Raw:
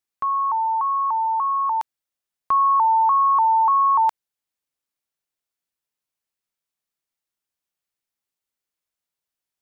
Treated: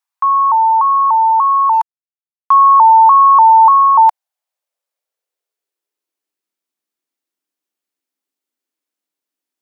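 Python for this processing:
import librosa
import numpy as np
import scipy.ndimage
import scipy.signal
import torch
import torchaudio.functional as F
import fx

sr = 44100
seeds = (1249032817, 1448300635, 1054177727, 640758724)

y = fx.backlash(x, sr, play_db=-38.5, at=(1.73, 2.54))
y = fx.filter_sweep_highpass(y, sr, from_hz=940.0, to_hz=280.0, start_s=3.6, end_s=6.55, q=3.2)
y = y * librosa.db_to_amplitude(1.5)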